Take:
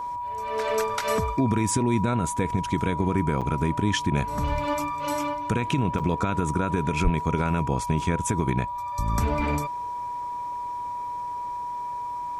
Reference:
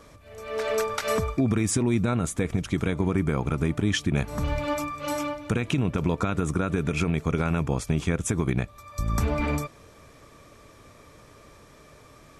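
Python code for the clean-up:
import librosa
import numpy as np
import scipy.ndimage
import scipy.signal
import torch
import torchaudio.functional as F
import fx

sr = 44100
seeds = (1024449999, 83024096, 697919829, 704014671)

y = fx.notch(x, sr, hz=970.0, q=30.0)
y = fx.highpass(y, sr, hz=140.0, slope=24, at=(7.03, 7.15), fade=0.02)
y = fx.fix_interpolate(y, sr, at_s=(3.41, 5.99), length_ms=6.4)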